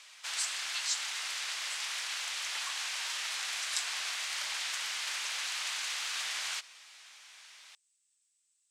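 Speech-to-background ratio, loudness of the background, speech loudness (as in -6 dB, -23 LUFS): -6.5 dB, -34.0 LUFS, -40.5 LUFS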